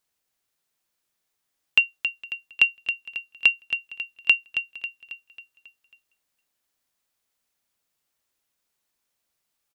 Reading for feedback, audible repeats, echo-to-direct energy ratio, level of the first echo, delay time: 50%, 5, -8.0 dB, -9.0 dB, 0.272 s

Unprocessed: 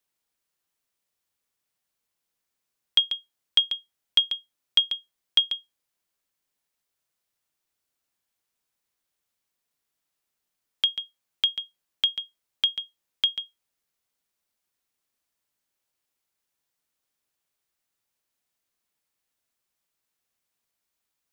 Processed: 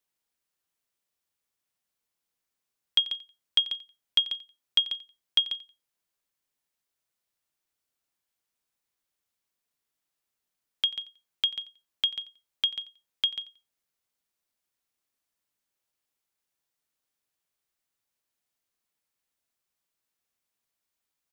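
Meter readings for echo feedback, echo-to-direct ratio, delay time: 25%, -19.0 dB, 89 ms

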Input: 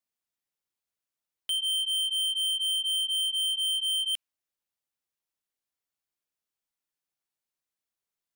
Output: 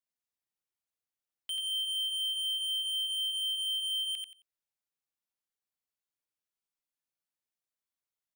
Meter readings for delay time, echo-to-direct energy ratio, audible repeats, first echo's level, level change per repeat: 89 ms, -3.5 dB, 3, -3.5 dB, -13.0 dB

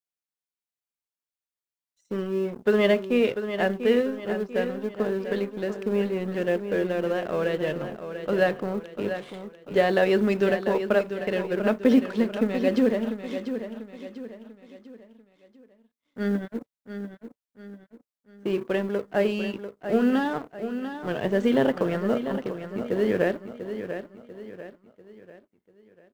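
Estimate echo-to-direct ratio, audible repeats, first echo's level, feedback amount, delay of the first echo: -8.5 dB, 4, -9.5 dB, 41%, 0.693 s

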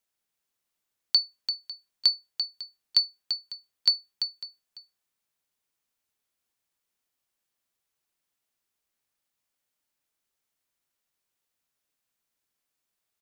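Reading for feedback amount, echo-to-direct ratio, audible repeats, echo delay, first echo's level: no steady repeat, -8.0 dB, 1, 0.341 s, -8.0 dB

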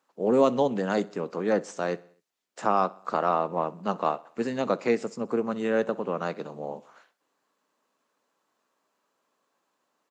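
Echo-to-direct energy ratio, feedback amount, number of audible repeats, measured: -21.0 dB, 53%, 3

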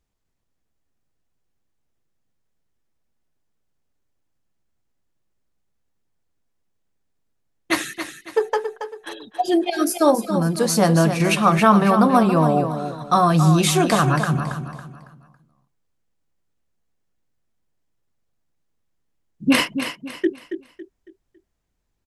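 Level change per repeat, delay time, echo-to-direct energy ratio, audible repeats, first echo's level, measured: -9.0 dB, 0.277 s, -8.5 dB, 3, -9.0 dB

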